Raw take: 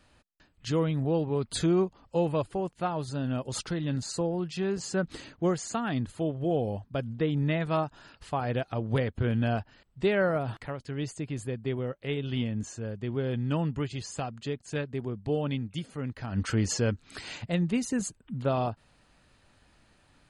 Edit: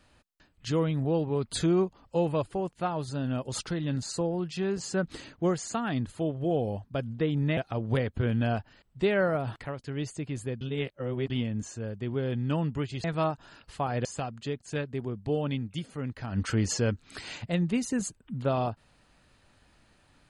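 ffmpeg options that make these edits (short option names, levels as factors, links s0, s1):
-filter_complex "[0:a]asplit=6[s0][s1][s2][s3][s4][s5];[s0]atrim=end=7.572[s6];[s1]atrim=start=8.578:end=11.622[s7];[s2]atrim=start=11.618:end=12.312,asetpts=PTS-STARTPTS,areverse[s8];[s3]atrim=start=12.308:end=14.052[s9];[s4]atrim=start=7.568:end=8.582[s10];[s5]atrim=start=14.048[s11];[s6][s7]acrossfade=d=0.004:c1=hsin:c2=hsin[s12];[s12][s8]acrossfade=d=0.004:c1=hsin:c2=hsin[s13];[s13][s9]acrossfade=d=0.004:c1=hsin:c2=hsin[s14];[s14][s10]acrossfade=d=0.004:c1=hsin:c2=hsin[s15];[s15][s11]acrossfade=d=0.004:c1=hsin:c2=hsin"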